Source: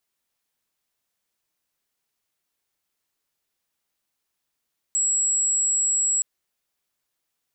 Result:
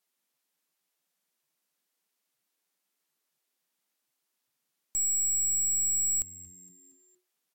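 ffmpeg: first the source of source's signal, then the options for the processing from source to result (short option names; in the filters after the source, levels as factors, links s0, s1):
-f lavfi -i "sine=f=7730:d=1.27:r=44100,volume=-0.94dB"
-filter_complex "[0:a]aeval=exprs='(tanh(20*val(0)+0.45)-tanh(0.45))/20':c=same,asplit=5[s0][s1][s2][s3][s4];[s1]adelay=232,afreqshift=-91,volume=0.1[s5];[s2]adelay=464,afreqshift=-182,volume=0.0519[s6];[s3]adelay=696,afreqshift=-273,volume=0.0269[s7];[s4]adelay=928,afreqshift=-364,volume=0.0141[s8];[s0][s5][s6][s7][s8]amix=inputs=5:normalize=0" -ar 44100 -c:a libvorbis -b:a 64k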